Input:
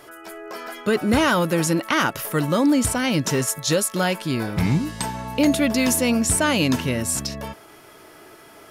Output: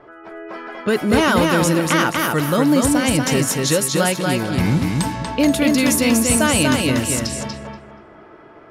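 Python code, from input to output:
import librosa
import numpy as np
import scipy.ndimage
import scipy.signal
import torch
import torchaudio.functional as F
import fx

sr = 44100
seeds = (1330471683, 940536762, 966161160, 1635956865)

p1 = x + fx.echo_feedback(x, sr, ms=239, feedback_pct=32, wet_db=-3.0, dry=0)
p2 = fx.env_lowpass(p1, sr, base_hz=1300.0, full_db=-17.5)
y = p2 * 10.0 ** (2.0 / 20.0)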